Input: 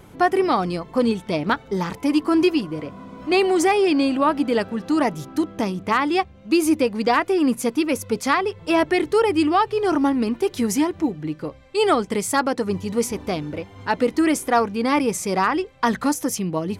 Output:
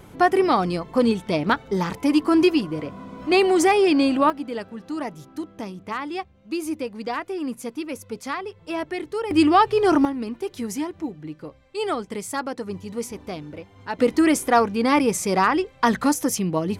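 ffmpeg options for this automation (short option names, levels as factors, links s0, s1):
-af "asetnsamples=n=441:p=0,asendcmd='4.3 volume volume -9.5dB;9.31 volume volume 2.5dB;10.05 volume volume -7.5dB;13.99 volume volume 1dB',volume=1.06"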